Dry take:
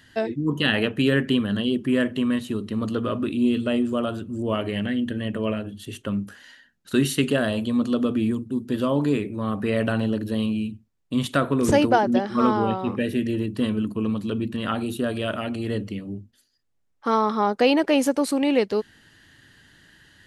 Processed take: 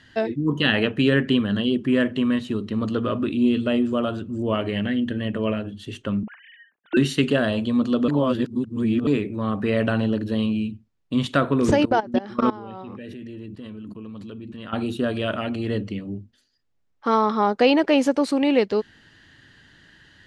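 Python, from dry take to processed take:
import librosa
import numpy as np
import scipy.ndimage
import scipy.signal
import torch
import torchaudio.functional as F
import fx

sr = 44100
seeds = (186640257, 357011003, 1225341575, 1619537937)

y = fx.sine_speech(x, sr, at=(6.23, 6.97))
y = fx.level_steps(y, sr, step_db=19, at=(11.74, 14.73))
y = fx.edit(y, sr, fx.reverse_span(start_s=8.08, length_s=0.99), tone=tone)
y = scipy.signal.sosfilt(scipy.signal.butter(2, 5700.0, 'lowpass', fs=sr, output='sos'), y)
y = F.gain(torch.from_numpy(y), 1.5).numpy()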